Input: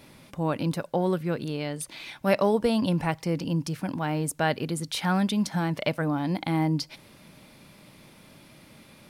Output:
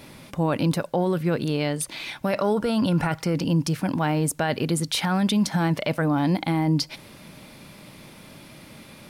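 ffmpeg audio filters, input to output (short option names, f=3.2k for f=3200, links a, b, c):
-filter_complex "[0:a]asettb=1/sr,asplit=3[a][b][c];[a]atrim=end=2.374[d];[b]atrim=start=2.37:end=3.34,asetpts=PTS-STARTPTS,afade=t=in:d=0.004:c=qsin,afade=t=out:st=0.966:d=0.004:c=qsin,equalizer=f=1.4k:t=o:w=0.21:g=13[e];[c]atrim=start=3.336[f];[d][e]acrossfade=d=0.004:c1=hsin:c2=qsin[g];[g][f]acrossfade=d=0.004:c1=qsin:c2=hsin,alimiter=limit=-21dB:level=0:latency=1:release=15,volume=6.5dB"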